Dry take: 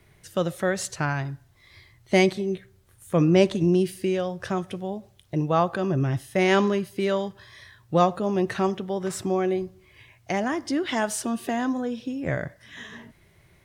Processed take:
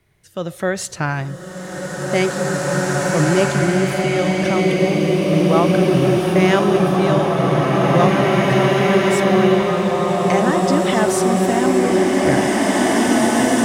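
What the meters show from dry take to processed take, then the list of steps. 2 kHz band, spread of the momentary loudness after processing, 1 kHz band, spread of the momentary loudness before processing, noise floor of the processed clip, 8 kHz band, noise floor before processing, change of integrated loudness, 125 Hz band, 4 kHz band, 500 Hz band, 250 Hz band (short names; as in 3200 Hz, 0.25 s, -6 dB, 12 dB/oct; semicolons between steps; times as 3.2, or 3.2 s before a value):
+10.0 dB, 8 LU, +10.0 dB, 13 LU, -33 dBFS, +11.0 dB, -59 dBFS, +9.0 dB, +9.5 dB, +10.0 dB, +9.5 dB, +9.5 dB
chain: AGC gain up to 11.5 dB; bloom reverb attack 2.49 s, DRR -6 dB; gain -5 dB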